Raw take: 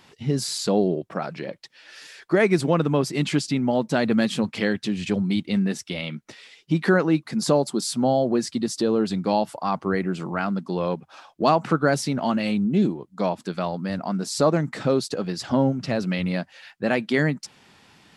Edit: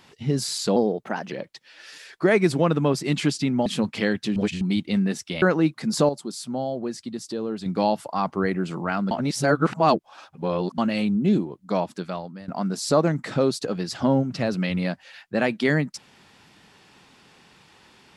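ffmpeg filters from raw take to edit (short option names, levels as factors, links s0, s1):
-filter_complex "[0:a]asplit=12[s0][s1][s2][s3][s4][s5][s6][s7][s8][s9][s10][s11];[s0]atrim=end=0.764[s12];[s1]atrim=start=0.76:end=1.41,asetpts=PTS-STARTPTS,asetrate=51156,aresample=44100,atrim=end_sample=24711,asetpts=PTS-STARTPTS[s13];[s2]atrim=start=1.406:end=3.752[s14];[s3]atrim=start=4.258:end=4.962[s15];[s4]atrim=start=4.958:end=5.212,asetpts=PTS-STARTPTS,areverse[s16];[s5]atrim=start=5.208:end=6.022[s17];[s6]atrim=start=6.908:end=7.582[s18];[s7]atrim=start=7.578:end=9.152,asetpts=PTS-STARTPTS,volume=0.422[s19];[s8]atrim=start=9.148:end=10.602[s20];[s9]atrim=start=10.598:end=12.272,asetpts=PTS-STARTPTS,areverse[s21];[s10]atrim=start=12.268:end=13.97,asetpts=PTS-STARTPTS,afade=t=out:st=1.072:d=0.63:silence=0.133352[s22];[s11]atrim=start=13.97,asetpts=PTS-STARTPTS,afade=t=in:d=0.004:c=hsin:silence=0.133352[s23];[s12][s13]acrossfade=d=0.004:c1=hsin:c2=hsin[s24];[s24][s14]acrossfade=d=0.004:c1=hsin:c2=hsin[s25];[s25][s15]acrossfade=d=0.004:c1=hsin:c2=hsin[s26];[s26][s16]acrossfade=d=0.004:c1=hsin:c2=hsin[s27];[s27][s17]acrossfade=d=0.004:c1=hsin:c2=hsin[s28];[s28][s18]acrossfade=d=0.004:c1=hsin:c2=hsin[s29];[s29][s19]acrossfade=d=0.004:c1=hsin:c2=hsin[s30];[s30][s20]acrossfade=d=0.004:c1=hsin:c2=hsin[s31];[s31][s21]acrossfade=d=0.004:c1=hsin:c2=hsin[s32];[s22][s23]concat=n=2:v=0:a=1[s33];[s32][s33]acrossfade=d=0.004:c1=hsin:c2=hsin"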